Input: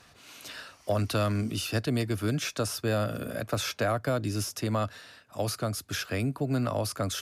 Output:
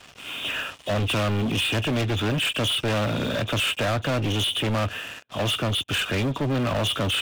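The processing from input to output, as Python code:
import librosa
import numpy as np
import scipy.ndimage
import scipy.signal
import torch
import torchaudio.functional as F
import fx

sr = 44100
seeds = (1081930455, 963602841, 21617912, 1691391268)

y = fx.freq_compress(x, sr, knee_hz=2400.0, ratio=4.0)
y = fx.leveller(y, sr, passes=5)
y = y * 10.0 ** (-5.0 / 20.0)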